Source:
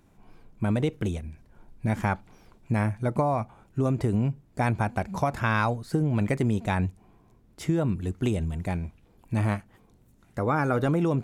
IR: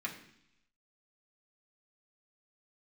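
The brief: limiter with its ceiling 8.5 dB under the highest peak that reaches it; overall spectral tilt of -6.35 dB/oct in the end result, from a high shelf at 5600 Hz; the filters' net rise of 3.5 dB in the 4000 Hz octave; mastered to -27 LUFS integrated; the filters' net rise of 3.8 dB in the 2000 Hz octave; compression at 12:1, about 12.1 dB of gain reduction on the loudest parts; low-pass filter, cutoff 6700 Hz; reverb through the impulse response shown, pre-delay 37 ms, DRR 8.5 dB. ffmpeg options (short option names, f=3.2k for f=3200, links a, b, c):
-filter_complex "[0:a]lowpass=6.7k,equalizer=f=2k:t=o:g=5,equalizer=f=4k:t=o:g=6,highshelf=f=5.6k:g=-8.5,acompressor=threshold=-32dB:ratio=12,alimiter=level_in=4dB:limit=-24dB:level=0:latency=1,volume=-4dB,asplit=2[a][b];[1:a]atrim=start_sample=2205,adelay=37[c];[b][c]afir=irnorm=-1:irlink=0,volume=-11dB[d];[a][d]amix=inputs=2:normalize=0,volume=12dB"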